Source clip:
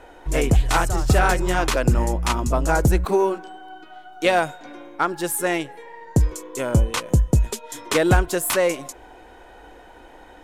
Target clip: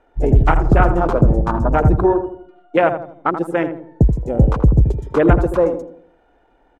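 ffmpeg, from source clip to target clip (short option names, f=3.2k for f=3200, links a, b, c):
-filter_complex "[0:a]afwtdn=0.0708,atempo=1.6,lowpass=f=2.2k:p=1,asplit=2[a][b];[b]adelay=79,lowpass=f=960:p=1,volume=-6.5dB,asplit=2[c][d];[d]adelay=79,lowpass=f=960:p=1,volume=0.47,asplit=2[e][f];[f]adelay=79,lowpass=f=960:p=1,volume=0.47,asplit=2[g][h];[h]adelay=79,lowpass=f=960:p=1,volume=0.47,asplit=2[i][j];[j]adelay=79,lowpass=f=960:p=1,volume=0.47,asplit=2[k][l];[l]adelay=79,lowpass=f=960:p=1,volume=0.47[m];[c][e][g][i][k][m]amix=inputs=6:normalize=0[n];[a][n]amix=inputs=2:normalize=0,asetrate=42336,aresample=44100,volume=5.5dB"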